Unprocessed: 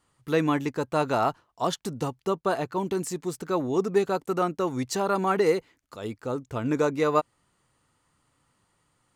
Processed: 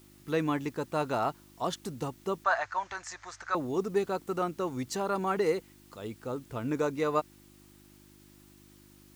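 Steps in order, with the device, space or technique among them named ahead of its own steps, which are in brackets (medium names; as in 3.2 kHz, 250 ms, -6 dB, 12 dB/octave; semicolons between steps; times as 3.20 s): video cassette with head-switching buzz (mains buzz 50 Hz, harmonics 7, -53 dBFS 0 dB/octave; white noise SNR 29 dB); 2.44–3.55 s: FFT filter 100 Hz 0 dB, 150 Hz -25 dB, 440 Hz -17 dB, 620 Hz +3 dB, 1.1 kHz +7 dB, 1.7 kHz +14 dB, 2.9 kHz 0 dB, 6.6 kHz +4 dB, 11 kHz -28 dB; trim -5.5 dB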